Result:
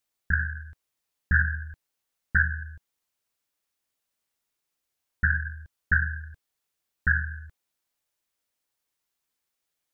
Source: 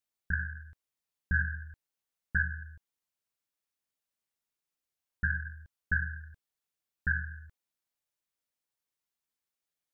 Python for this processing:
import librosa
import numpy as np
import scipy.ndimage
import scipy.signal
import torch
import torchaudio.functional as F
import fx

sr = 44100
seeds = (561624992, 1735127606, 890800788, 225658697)

y = fx.peak_eq(x, sr, hz=170.0, db=-3.0, octaves=0.69)
y = fx.doppler_dist(y, sr, depth_ms=0.18)
y = F.gain(torch.from_numpy(y), 7.0).numpy()